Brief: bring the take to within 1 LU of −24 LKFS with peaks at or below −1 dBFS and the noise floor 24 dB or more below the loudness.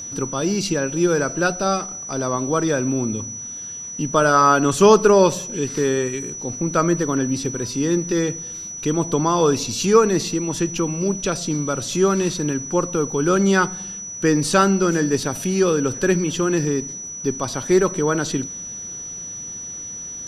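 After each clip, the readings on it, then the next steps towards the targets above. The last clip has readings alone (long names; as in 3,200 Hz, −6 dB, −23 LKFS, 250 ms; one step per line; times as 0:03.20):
crackle rate 21 per second; interfering tone 5,900 Hz; level of the tone −30 dBFS; integrated loudness −20.5 LKFS; sample peak −2.0 dBFS; target loudness −24.0 LKFS
→ click removal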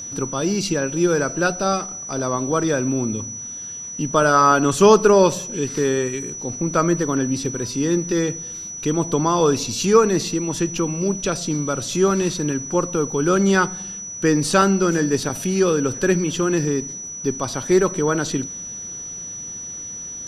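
crackle rate 0 per second; interfering tone 5,900 Hz; level of the tone −30 dBFS
→ notch filter 5,900 Hz, Q 30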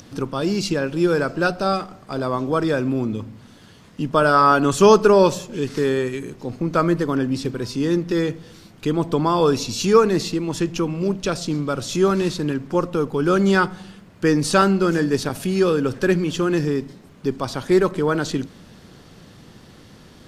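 interfering tone none found; integrated loudness −20.0 LKFS; sample peak −2.5 dBFS; target loudness −24.0 LKFS
→ level −4 dB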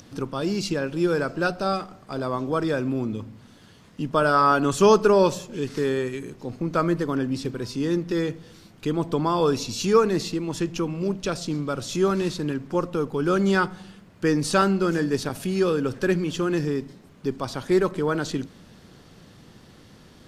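integrated loudness −24.0 LKFS; sample peak −6.5 dBFS; background noise floor −51 dBFS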